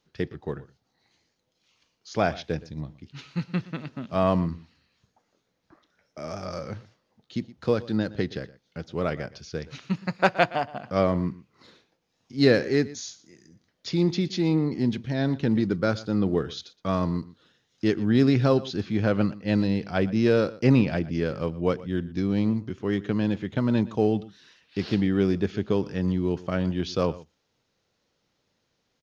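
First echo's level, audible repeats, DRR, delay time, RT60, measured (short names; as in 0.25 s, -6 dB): -19.0 dB, 1, none, 0.119 s, none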